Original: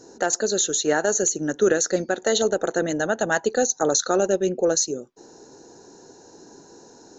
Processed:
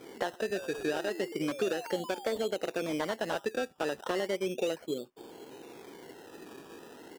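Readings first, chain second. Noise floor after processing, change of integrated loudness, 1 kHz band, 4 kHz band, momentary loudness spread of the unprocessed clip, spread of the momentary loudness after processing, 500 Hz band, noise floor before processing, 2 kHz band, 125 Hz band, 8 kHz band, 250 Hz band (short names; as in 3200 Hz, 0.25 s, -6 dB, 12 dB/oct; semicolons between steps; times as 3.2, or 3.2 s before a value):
-56 dBFS, -11.5 dB, -10.0 dB, -11.0 dB, 4 LU, 17 LU, -10.5 dB, -50 dBFS, -10.5 dB, -10.5 dB, n/a, -9.5 dB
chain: treble ducked by the level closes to 2700 Hz, closed at -18.5 dBFS; compressor 4:1, threshold -29 dBFS, peak gain reduction 12.5 dB; painted sound rise, 0.55–2.41, 1500–3500 Hz -41 dBFS; downsampling 11025 Hz; dynamic EQ 4000 Hz, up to -8 dB, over -57 dBFS, Q 1.8; decimation with a swept rate 16×, swing 60% 0.34 Hz; low shelf 86 Hz -12 dB; slew limiter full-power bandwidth 96 Hz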